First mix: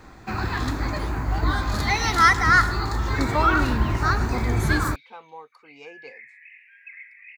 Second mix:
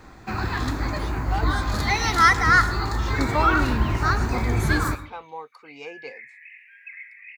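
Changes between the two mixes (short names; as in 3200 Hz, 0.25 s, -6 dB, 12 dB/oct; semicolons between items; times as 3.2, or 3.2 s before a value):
speech +5.0 dB; second sound: send on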